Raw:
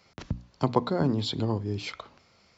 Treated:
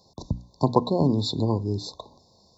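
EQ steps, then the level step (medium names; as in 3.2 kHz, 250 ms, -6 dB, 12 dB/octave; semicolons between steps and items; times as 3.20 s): brick-wall FIR band-stop 1.1–3.5 kHz; +4.0 dB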